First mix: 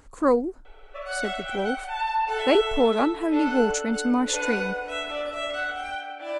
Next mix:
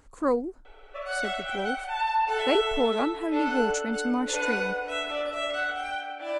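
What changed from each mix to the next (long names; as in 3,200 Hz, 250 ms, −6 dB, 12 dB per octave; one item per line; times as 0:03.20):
speech −4.5 dB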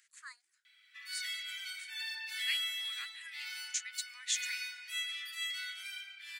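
background: remove loudspeaker in its box 400–8,300 Hz, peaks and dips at 420 Hz +9 dB, 1,400 Hz +7 dB, 2,700 Hz +7 dB, 4,600 Hz −5 dB
master: add elliptic high-pass filter 1,800 Hz, stop band 70 dB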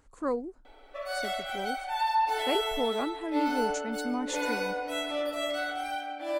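speech −5.5 dB
master: remove elliptic high-pass filter 1,800 Hz, stop band 70 dB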